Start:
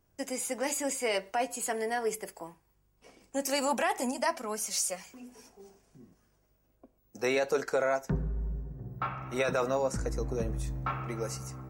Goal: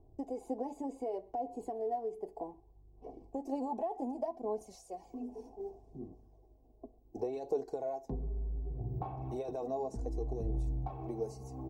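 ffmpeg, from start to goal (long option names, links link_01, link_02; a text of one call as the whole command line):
ffmpeg -i in.wav -af "asetnsamples=nb_out_samples=441:pad=0,asendcmd='4.61 highshelf g -3.5;7.33 highshelf g 7.5',highshelf=frequency=2200:gain=-10,aecho=1:1:2.7:0.59,acompressor=threshold=-42dB:ratio=4,firequalizer=gain_entry='entry(900,0);entry(1300,-30);entry(3900,-20);entry(10000,-24)':delay=0.05:min_phase=1,aphaser=in_gain=1:out_gain=1:delay=4.7:decay=0.37:speed=0.66:type=sinusoidal,volume=5.5dB" out.wav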